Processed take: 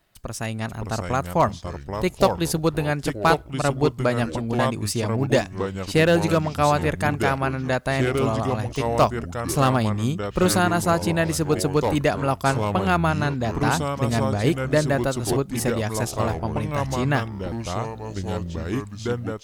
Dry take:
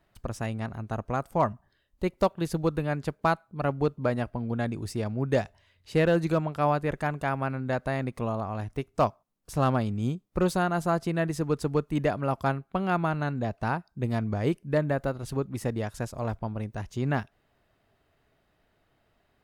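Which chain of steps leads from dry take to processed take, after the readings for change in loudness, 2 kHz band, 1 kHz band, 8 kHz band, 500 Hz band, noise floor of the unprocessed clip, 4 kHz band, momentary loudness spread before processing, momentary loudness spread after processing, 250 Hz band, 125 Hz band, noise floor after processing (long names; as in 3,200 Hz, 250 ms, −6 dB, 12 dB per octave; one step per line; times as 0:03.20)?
+6.0 dB, +8.0 dB, +6.5 dB, +15.5 dB, +6.0 dB, −71 dBFS, +13.0 dB, 7 LU, 9 LU, +6.0 dB, +6.0 dB, −39 dBFS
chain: delay with pitch and tempo change per echo 498 ms, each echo −4 semitones, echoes 3, each echo −6 dB
automatic gain control gain up to 4.5 dB
high-shelf EQ 2,700 Hz +11.5 dB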